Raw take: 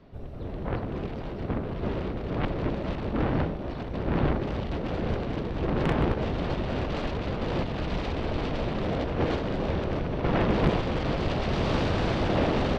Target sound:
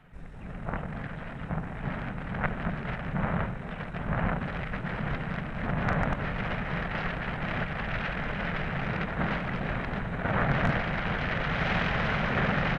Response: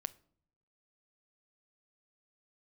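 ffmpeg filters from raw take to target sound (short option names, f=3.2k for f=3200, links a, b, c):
-af "aexciter=amount=2.7:drive=1.9:freq=2.3k,equalizer=f=125:t=o:w=1:g=-5,equalizer=f=250:t=o:w=1:g=8,equalizer=f=500:t=o:w=1:g=-11,equalizer=f=1k:t=o:w=1:g=7,equalizer=f=2k:t=o:w=1:g=8,equalizer=f=4k:t=o:w=1:g=4,asetrate=29433,aresample=44100,atempo=1.49831,volume=-4dB"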